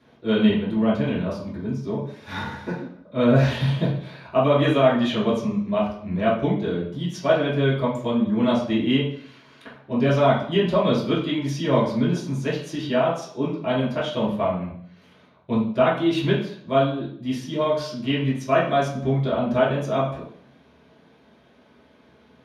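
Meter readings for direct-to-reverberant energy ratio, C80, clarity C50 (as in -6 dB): -10.0 dB, 9.0 dB, 4.0 dB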